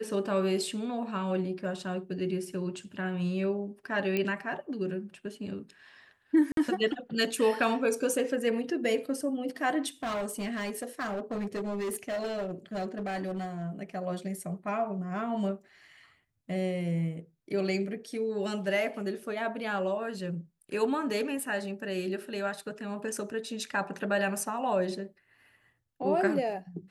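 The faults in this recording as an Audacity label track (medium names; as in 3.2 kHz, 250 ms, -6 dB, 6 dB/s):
4.170000	4.170000	pop -17 dBFS
6.520000	6.570000	dropout 52 ms
10.030000	13.700000	clipped -29.5 dBFS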